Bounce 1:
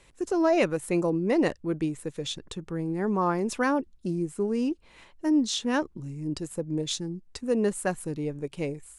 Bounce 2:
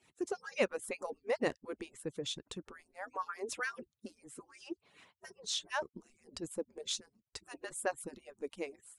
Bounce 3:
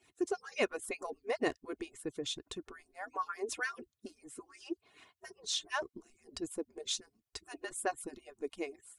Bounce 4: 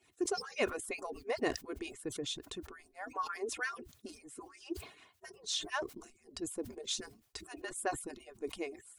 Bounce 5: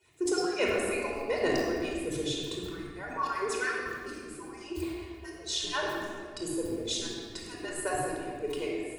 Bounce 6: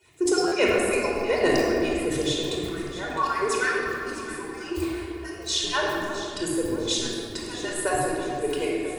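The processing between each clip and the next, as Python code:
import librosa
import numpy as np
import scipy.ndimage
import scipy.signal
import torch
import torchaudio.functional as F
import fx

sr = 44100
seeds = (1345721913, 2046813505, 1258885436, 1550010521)

y1 = fx.hpss_only(x, sr, part='percussive')
y1 = fx.low_shelf(y1, sr, hz=84.0, db=-8.5)
y1 = y1 * 10.0 ** (-5.5 / 20.0)
y2 = y1 + 0.52 * np.pad(y1, (int(2.8 * sr / 1000.0), 0))[:len(y1)]
y3 = fx.sustainer(y2, sr, db_per_s=120.0)
y3 = y3 * 10.0 ** (-1.0 / 20.0)
y4 = fx.room_shoebox(y3, sr, seeds[0], volume_m3=3400.0, walls='mixed', distance_m=4.8)
y5 = fx.echo_alternate(y4, sr, ms=329, hz=1500.0, feedback_pct=64, wet_db=-9)
y5 = fx.buffer_glitch(y5, sr, at_s=(0.47,), block=512, repeats=3)
y5 = y5 * 10.0 ** (6.5 / 20.0)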